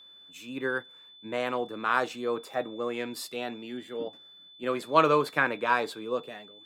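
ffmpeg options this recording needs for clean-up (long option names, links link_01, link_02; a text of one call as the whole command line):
ffmpeg -i in.wav -af "bandreject=frequency=3500:width=30" out.wav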